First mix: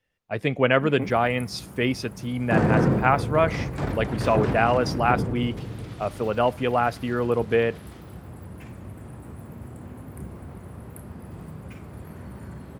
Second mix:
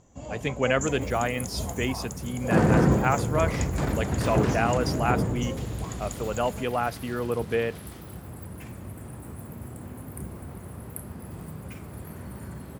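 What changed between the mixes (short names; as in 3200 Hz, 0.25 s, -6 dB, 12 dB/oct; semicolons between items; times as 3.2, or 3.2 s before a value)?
speech -5.0 dB; first sound: unmuted; master: add high shelf 7000 Hz +11.5 dB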